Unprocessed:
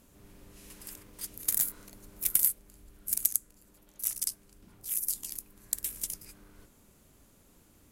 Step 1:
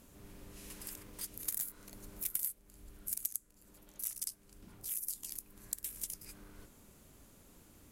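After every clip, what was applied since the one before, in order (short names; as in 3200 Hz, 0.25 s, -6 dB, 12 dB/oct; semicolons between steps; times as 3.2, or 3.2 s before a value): compressor 2:1, threshold -43 dBFS, peak gain reduction 13 dB; gain +1 dB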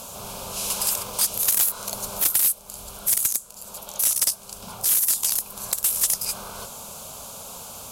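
fixed phaser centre 780 Hz, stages 4; overdrive pedal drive 29 dB, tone 6600 Hz, clips at -12.5 dBFS; gain +7.5 dB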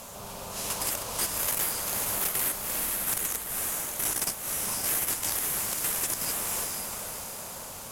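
diffused feedback echo 0.513 s, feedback 47%, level -3.5 dB; in parallel at -9 dB: sample-rate reducer 5200 Hz, jitter 0%; on the sum: limiter -12.5 dBFS, peak gain reduction 6 dB; gain -6 dB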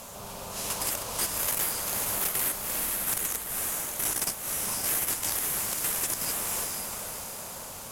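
nothing audible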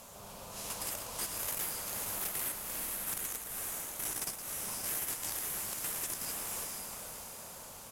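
echo 0.114 s -10 dB; gain -8.5 dB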